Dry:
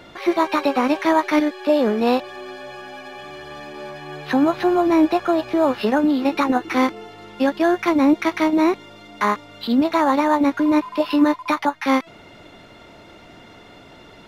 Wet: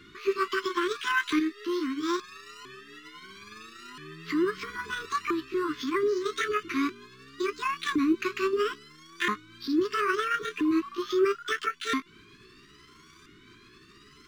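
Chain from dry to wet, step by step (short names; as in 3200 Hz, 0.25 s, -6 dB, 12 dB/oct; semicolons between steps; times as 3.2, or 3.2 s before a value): repeated pitch sweeps +9.5 st, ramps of 1.326 s; brick-wall FIR band-stop 440–1000 Hz; gain -7 dB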